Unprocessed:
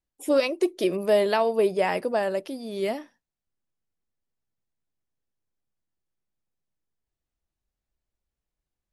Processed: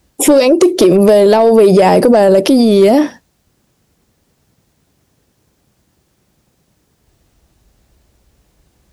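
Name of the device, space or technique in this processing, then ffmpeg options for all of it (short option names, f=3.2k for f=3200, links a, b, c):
mastering chain: -filter_complex "[0:a]highpass=53,equalizer=f=5.8k:t=o:w=1.7:g=3,acrossover=split=1000|4000[a][b][c];[a]acompressor=threshold=-25dB:ratio=4[d];[b]acompressor=threshold=-44dB:ratio=4[e];[c]acompressor=threshold=-41dB:ratio=4[f];[d][e][f]amix=inputs=3:normalize=0,acompressor=threshold=-29dB:ratio=2,asoftclip=type=tanh:threshold=-23dB,tiltshelf=f=790:g=4,asoftclip=type=hard:threshold=-24dB,alimiter=level_in=33dB:limit=-1dB:release=50:level=0:latency=1,volume=-1dB"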